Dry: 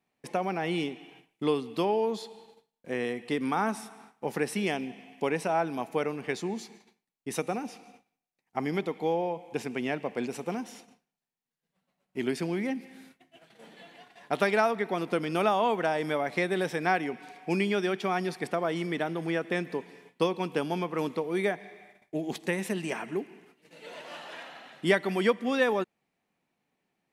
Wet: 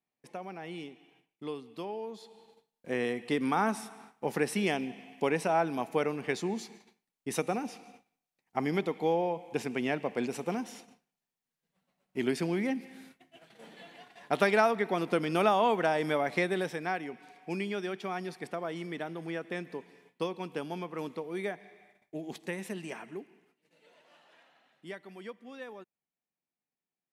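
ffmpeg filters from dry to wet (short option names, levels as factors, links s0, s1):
-af "afade=t=in:st=2.17:d=0.74:silence=0.266073,afade=t=out:st=16.33:d=0.53:silence=0.446684,afade=t=out:st=22.8:d=1.15:silence=0.251189"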